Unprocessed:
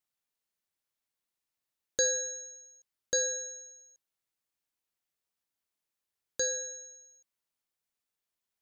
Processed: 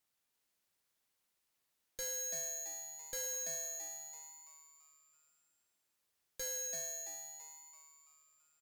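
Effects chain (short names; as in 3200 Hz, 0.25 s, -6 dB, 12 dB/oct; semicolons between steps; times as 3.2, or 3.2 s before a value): tube stage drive 45 dB, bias 0.4; frequency-shifting echo 0.334 s, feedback 45%, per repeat +150 Hz, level -5 dB; gain +6 dB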